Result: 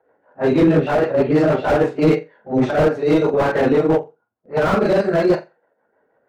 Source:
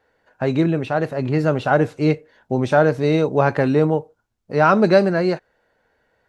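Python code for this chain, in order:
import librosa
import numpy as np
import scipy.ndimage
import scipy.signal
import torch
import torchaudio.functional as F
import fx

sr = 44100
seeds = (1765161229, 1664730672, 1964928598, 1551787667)

p1 = fx.phase_scramble(x, sr, seeds[0], window_ms=100)
p2 = fx.env_lowpass(p1, sr, base_hz=1100.0, full_db=-11.5)
p3 = scipy.signal.sosfilt(scipy.signal.butter(2, 170.0, 'highpass', fs=sr, output='sos'), p2)
p4 = fx.peak_eq(p3, sr, hz=880.0, db=7.5, octaves=2.6)
p5 = fx.level_steps(p4, sr, step_db=10)
p6 = p4 + (p5 * 10.0 ** (-1.0 / 20.0))
p7 = fx.transient(p6, sr, attack_db=-10, sustain_db=-6)
p8 = fx.rider(p7, sr, range_db=4, speed_s=0.5)
p9 = fx.rotary(p8, sr, hz=6.3)
p10 = p9 + fx.room_flutter(p9, sr, wall_m=7.5, rt60_s=0.22, dry=0)
y = fx.slew_limit(p10, sr, full_power_hz=140.0)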